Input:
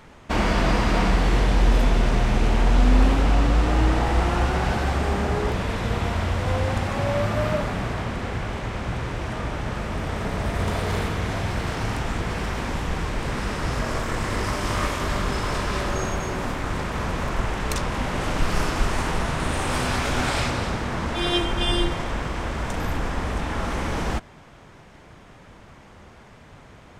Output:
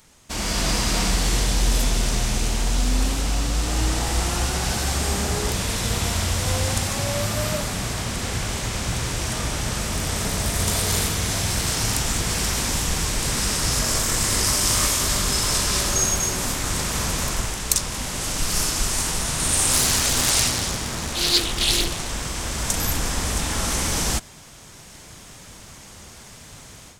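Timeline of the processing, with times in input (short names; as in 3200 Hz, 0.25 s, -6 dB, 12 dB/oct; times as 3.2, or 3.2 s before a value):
19.73–22.09 Doppler distortion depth 0.77 ms
whole clip: high shelf 3000 Hz +9.5 dB; AGC; tone controls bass +3 dB, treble +15 dB; gain -12 dB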